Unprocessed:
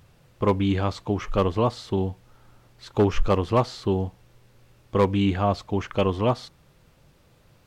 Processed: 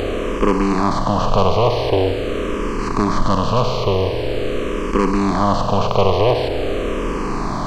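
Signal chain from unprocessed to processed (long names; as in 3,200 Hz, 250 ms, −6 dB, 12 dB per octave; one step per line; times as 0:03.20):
compressor on every frequency bin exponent 0.2
0:02.07–0:05.20: parametric band 760 Hz −8.5 dB 0.37 octaves
frequency shifter mixed with the dry sound −0.45 Hz
level +2 dB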